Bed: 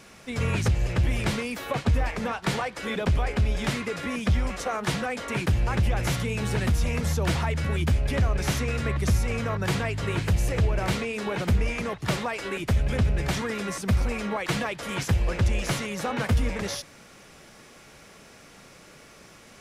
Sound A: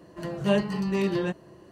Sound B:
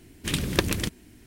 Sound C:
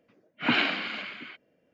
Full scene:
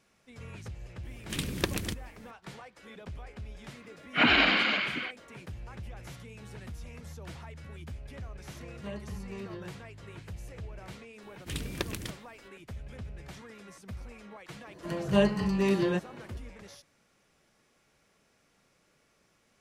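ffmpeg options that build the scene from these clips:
-filter_complex "[2:a]asplit=2[s0][s1];[1:a]asplit=2[s2][s3];[0:a]volume=0.112[s4];[3:a]alimiter=level_in=9.44:limit=0.891:release=50:level=0:latency=1[s5];[s2]alimiter=limit=0.188:level=0:latency=1:release=71[s6];[s0]atrim=end=1.26,asetpts=PTS-STARTPTS,volume=0.473,afade=t=in:d=0.004:c=hsin,afade=t=out:st=1.256:d=0.004:c=hsin,adelay=1050[s7];[s5]atrim=end=1.73,asetpts=PTS-STARTPTS,volume=0.266,afade=t=in:d=0.004:c=hsin,afade=t=out:st=1.726:d=0.004:c=hsin,adelay=3750[s8];[s6]atrim=end=1.71,asetpts=PTS-STARTPTS,volume=0.158,afade=t=in:d=0.004:c=hsin,afade=t=out:st=1.706:d=0.004:c=hsin,adelay=8380[s9];[s1]atrim=end=1.26,asetpts=PTS-STARTPTS,volume=0.299,afade=t=in:d=0.004:c=hsin,afade=t=out:st=1.256:d=0.004:c=hsin,adelay=494802S[s10];[s3]atrim=end=1.71,asetpts=PTS-STARTPTS,volume=0.944,afade=t=in:d=0.004:c=hsin,afade=t=out:st=1.706:d=0.004:c=hsin,adelay=14670[s11];[s4][s7][s8][s9][s10][s11]amix=inputs=6:normalize=0"

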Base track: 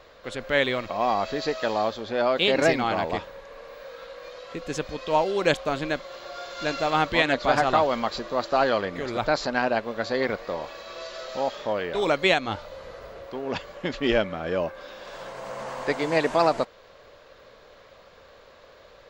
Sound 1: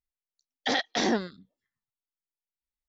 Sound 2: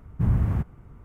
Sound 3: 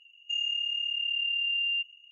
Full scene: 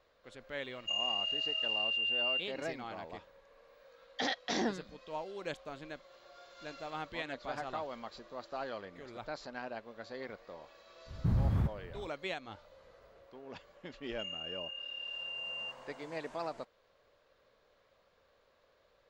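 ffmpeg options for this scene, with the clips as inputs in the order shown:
-filter_complex "[3:a]asplit=2[s0][s1];[0:a]volume=0.119[s2];[s0]highshelf=f=3100:g=6.5[s3];[2:a]acompressor=threshold=0.0708:ratio=6:attack=3.2:release=140:knee=1:detection=peak[s4];[s3]atrim=end=2.11,asetpts=PTS-STARTPTS,volume=0.447,afade=t=in:d=0.004:c=hsin,afade=t=out:st=2.106:d=0.004:c=hsin,adelay=580[s5];[1:a]atrim=end=2.88,asetpts=PTS-STARTPTS,volume=0.422,afade=t=in:d=0.004:c=hsin,afade=t=out:st=2.876:d=0.004:c=hsin,adelay=155673S[s6];[s4]atrim=end=1.04,asetpts=PTS-STARTPTS,volume=0.794,afade=t=in:d=0.05,afade=t=out:st=0.99:d=0.05,adelay=11050[s7];[s1]atrim=end=2.11,asetpts=PTS-STARTPTS,volume=0.237,afade=t=in:d=0.004:c=hsin,afade=t=out:st=2.106:d=0.004:c=hsin,adelay=13890[s8];[s2][s5][s6][s7][s8]amix=inputs=5:normalize=0"

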